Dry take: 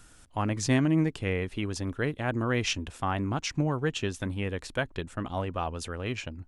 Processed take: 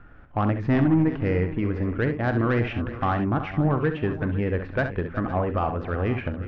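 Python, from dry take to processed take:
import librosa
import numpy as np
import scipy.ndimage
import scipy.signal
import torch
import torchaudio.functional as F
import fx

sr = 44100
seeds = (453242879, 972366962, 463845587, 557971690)

y = fx.recorder_agc(x, sr, target_db=-19.0, rise_db_per_s=7.1, max_gain_db=30)
y = scipy.signal.sosfilt(scipy.signal.butter(4, 1900.0, 'lowpass', fs=sr, output='sos'), y)
y = fx.notch(y, sr, hz=950.0, q=14.0)
y = 10.0 ** (-20.5 / 20.0) * np.tanh(y / 10.0 ** (-20.5 / 20.0))
y = fx.echo_multitap(y, sr, ms=(44, 67, 370, 507), db=(-14.0, -9.5, -14.5, -15.5))
y = F.gain(torch.from_numpy(y), 6.5).numpy()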